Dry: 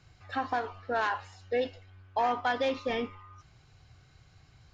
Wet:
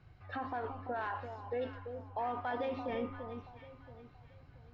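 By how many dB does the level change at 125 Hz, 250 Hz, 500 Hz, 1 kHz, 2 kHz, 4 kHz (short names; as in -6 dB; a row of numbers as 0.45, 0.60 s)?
+1.0, -4.0, -6.5, -7.5, -10.0, -14.0 dB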